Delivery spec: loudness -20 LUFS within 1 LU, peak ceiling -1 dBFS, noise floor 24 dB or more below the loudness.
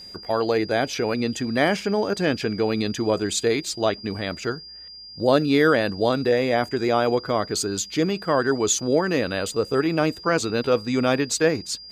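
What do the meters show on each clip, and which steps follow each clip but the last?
steady tone 4.8 kHz; tone level -39 dBFS; loudness -22.5 LUFS; peak level -5.0 dBFS; loudness target -20.0 LUFS
-> band-stop 4.8 kHz, Q 30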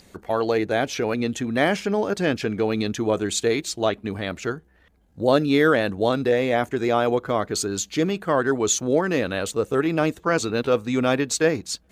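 steady tone not found; loudness -23.0 LUFS; peak level -5.0 dBFS; loudness target -20.0 LUFS
-> trim +3 dB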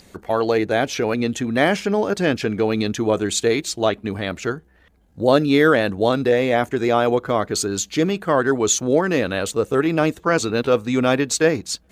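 loudness -20.0 LUFS; peak level -2.0 dBFS; noise floor -54 dBFS

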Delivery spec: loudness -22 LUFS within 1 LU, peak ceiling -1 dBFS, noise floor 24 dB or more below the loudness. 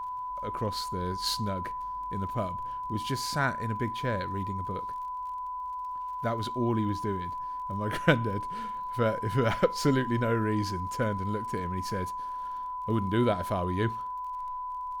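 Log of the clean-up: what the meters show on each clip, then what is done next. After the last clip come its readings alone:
tick rate 31 per s; steady tone 1 kHz; tone level -33 dBFS; loudness -31.0 LUFS; peak level -6.5 dBFS; loudness target -22.0 LUFS
-> de-click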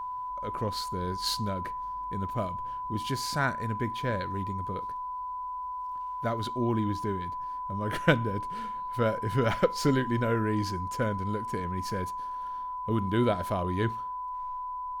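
tick rate 0.93 per s; steady tone 1 kHz; tone level -33 dBFS
-> band-stop 1 kHz, Q 30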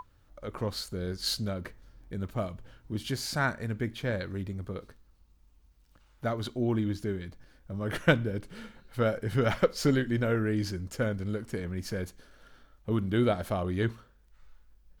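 steady tone not found; loudness -31.5 LUFS; peak level -7.0 dBFS; loudness target -22.0 LUFS
-> trim +9.5 dB; peak limiter -1 dBFS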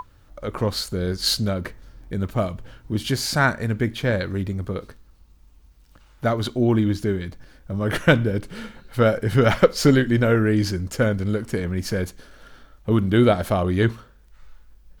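loudness -22.0 LUFS; peak level -1.0 dBFS; noise floor -52 dBFS

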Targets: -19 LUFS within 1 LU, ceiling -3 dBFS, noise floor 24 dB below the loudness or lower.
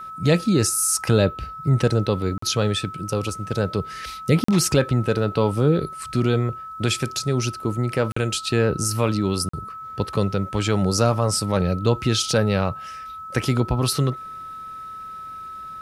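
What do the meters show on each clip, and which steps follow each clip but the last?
dropouts 4; longest dropout 44 ms; steady tone 1.3 kHz; tone level -33 dBFS; loudness -22.0 LUFS; peak level -4.5 dBFS; loudness target -19.0 LUFS
-> interpolate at 2.38/4.44/8.12/9.49 s, 44 ms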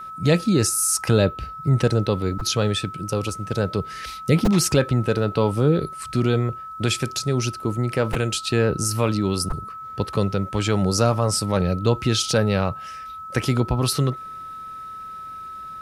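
dropouts 0; steady tone 1.3 kHz; tone level -33 dBFS
-> band-stop 1.3 kHz, Q 30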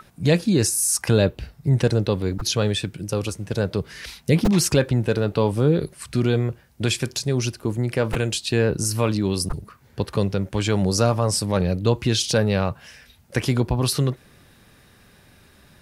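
steady tone not found; loudness -22.0 LUFS; peak level -4.5 dBFS; loudness target -19.0 LUFS
-> trim +3 dB; peak limiter -3 dBFS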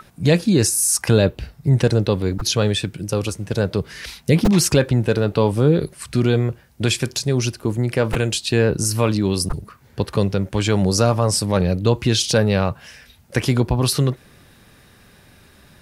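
loudness -19.5 LUFS; peak level -3.0 dBFS; noise floor -51 dBFS

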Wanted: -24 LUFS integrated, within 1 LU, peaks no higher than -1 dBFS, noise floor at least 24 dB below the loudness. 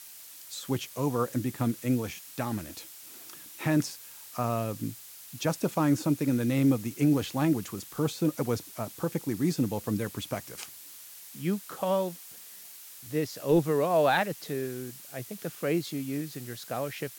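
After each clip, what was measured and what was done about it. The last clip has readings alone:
noise floor -48 dBFS; noise floor target -54 dBFS; loudness -30.0 LUFS; peak level -13.0 dBFS; loudness target -24.0 LUFS
-> noise print and reduce 6 dB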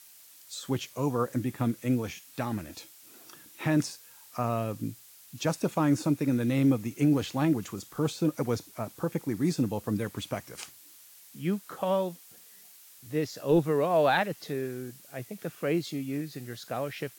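noise floor -54 dBFS; loudness -30.0 LUFS; peak level -13.5 dBFS; loudness target -24.0 LUFS
-> trim +6 dB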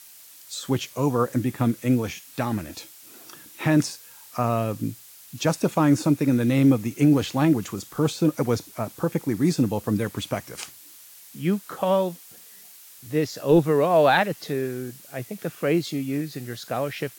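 loudness -24.0 LUFS; peak level -7.5 dBFS; noise floor -48 dBFS

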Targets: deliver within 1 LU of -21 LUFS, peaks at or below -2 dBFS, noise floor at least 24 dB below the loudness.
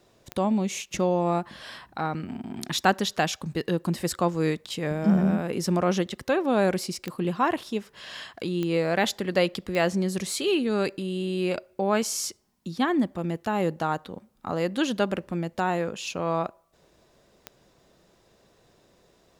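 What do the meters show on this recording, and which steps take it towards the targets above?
clicks found 5; loudness -27.0 LUFS; peak level -6.5 dBFS; loudness target -21.0 LUFS
-> de-click; trim +6 dB; peak limiter -2 dBFS

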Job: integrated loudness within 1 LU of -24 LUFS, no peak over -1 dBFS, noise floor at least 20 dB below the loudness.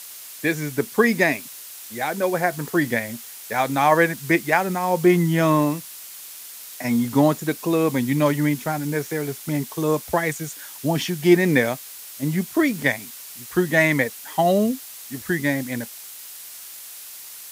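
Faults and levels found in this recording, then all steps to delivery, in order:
noise floor -39 dBFS; noise floor target -42 dBFS; loudness -21.5 LUFS; peak level -3.0 dBFS; loudness target -24.0 LUFS
-> noise reduction 6 dB, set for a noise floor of -39 dBFS; trim -2.5 dB

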